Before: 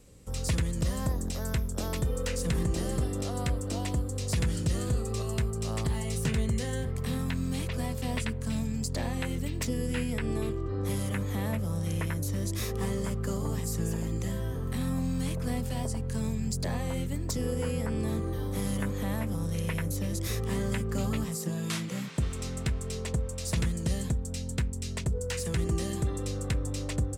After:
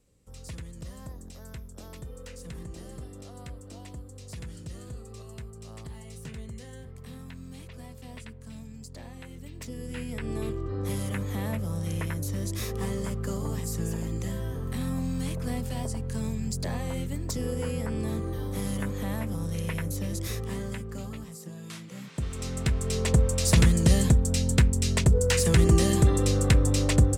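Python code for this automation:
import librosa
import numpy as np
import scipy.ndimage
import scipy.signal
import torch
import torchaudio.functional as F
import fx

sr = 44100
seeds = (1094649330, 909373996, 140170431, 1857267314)

y = fx.gain(x, sr, db=fx.line((9.31, -12.0), (10.5, 0.0), (20.2, 0.0), (21.21, -9.0), (21.85, -9.0), (22.41, 1.0), (23.21, 9.5)))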